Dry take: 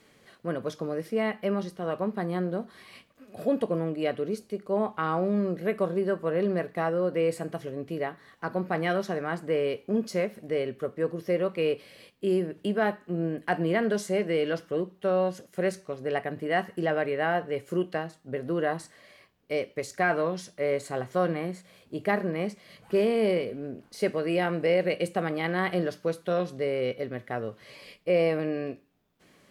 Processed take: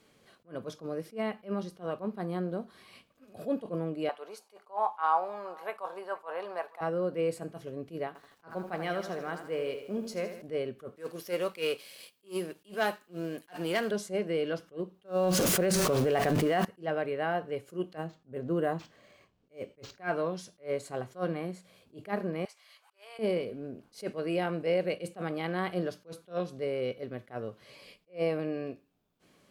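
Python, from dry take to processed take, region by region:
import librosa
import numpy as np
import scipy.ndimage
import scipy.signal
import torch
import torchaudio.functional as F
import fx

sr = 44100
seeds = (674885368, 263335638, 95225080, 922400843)

y = fx.chain(x, sr, fx.highpass_res(hz=870.0, q=4.9),
    fx.echo_single(ms=471, db=-24.0), at=(4.09, 6.81))
y = fx.chain(y, sr, fx.low_shelf(hz=440.0, db=-5.5),
    fx.echo_crushed(ms=80, feedback_pct=55, bits=9, wet_db=-9.0), at=(8.07, 10.42))
y = fx.chain(y, sr, fx.leveller(passes=1),
    fx.tilt_eq(slope=3.5), at=(10.96, 13.91))
y = fx.chain(y, sr, fx.zero_step(step_db=-41.0),
    fx.env_flatten(amount_pct=100), at=(15.05, 16.65))
y = fx.chain(y, sr, fx.low_shelf(hz=410.0, db=5.0),
    fx.resample_linear(factor=4), at=(17.97, 19.99))
y = fx.chain(y, sr, fx.highpass(hz=820.0, slope=24),
    fx.auto_swell(attack_ms=396.0), at=(22.45, 23.19))
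y = fx.peak_eq(y, sr, hz=1900.0, db=-6.0, octaves=0.31)
y = fx.attack_slew(y, sr, db_per_s=280.0)
y = y * librosa.db_to_amplitude(-4.0)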